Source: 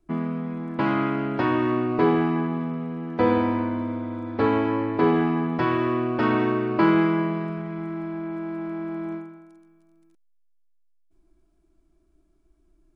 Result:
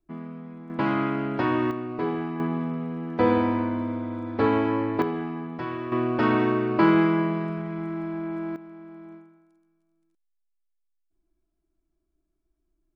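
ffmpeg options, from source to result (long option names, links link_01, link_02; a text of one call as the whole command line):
ffmpeg -i in.wav -af "asetnsamples=nb_out_samples=441:pad=0,asendcmd='0.7 volume volume -1.5dB;1.71 volume volume -8dB;2.4 volume volume -0.5dB;5.02 volume volume -9dB;5.92 volume volume 0dB;8.56 volume volume -12.5dB',volume=-10dB" out.wav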